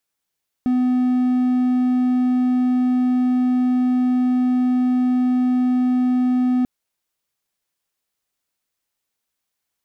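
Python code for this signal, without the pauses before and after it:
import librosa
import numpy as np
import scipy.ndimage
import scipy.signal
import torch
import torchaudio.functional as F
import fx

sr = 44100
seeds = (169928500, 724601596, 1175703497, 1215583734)

y = 10.0 ** (-13.0 / 20.0) * (1.0 - 4.0 * np.abs(np.mod(251.0 * (np.arange(round(5.99 * sr)) / sr) + 0.25, 1.0) - 0.5))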